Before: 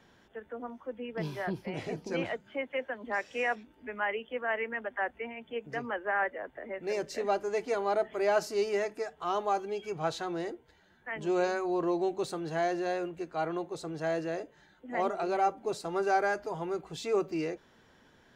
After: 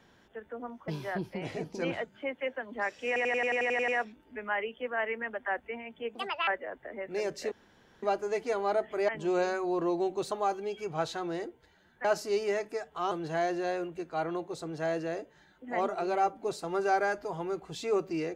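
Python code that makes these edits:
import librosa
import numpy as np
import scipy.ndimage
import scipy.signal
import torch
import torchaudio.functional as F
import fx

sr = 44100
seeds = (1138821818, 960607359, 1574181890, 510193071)

y = fx.edit(x, sr, fx.cut(start_s=0.88, length_s=0.32),
    fx.stutter(start_s=3.39, slice_s=0.09, count=10),
    fx.speed_span(start_s=5.66, length_s=0.54, speed=1.66),
    fx.insert_room_tone(at_s=7.24, length_s=0.51),
    fx.swap(start_s=8.3, length_s=1.07, other_s=11.1, other_length_s=1.23), tone=tone)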